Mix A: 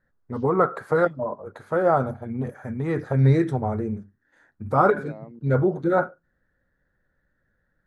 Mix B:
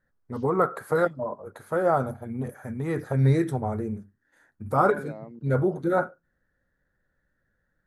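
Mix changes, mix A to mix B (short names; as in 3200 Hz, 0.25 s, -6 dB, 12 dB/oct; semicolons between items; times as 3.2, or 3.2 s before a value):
first voice -3.0 dB; master: remove air absorption 78 m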